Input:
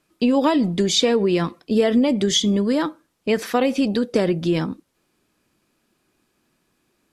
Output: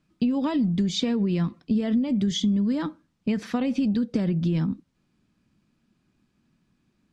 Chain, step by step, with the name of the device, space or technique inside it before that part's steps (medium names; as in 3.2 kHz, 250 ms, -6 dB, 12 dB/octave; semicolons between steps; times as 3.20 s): jukebox (low-pass 6.5 kHz 12 dB/octave; resonant low shelf 290 Hz +10 dB, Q 1.5; compression 4:1, threshold -15 dBFS, peak gain reduction 9.5 dB); trim -6.5 dB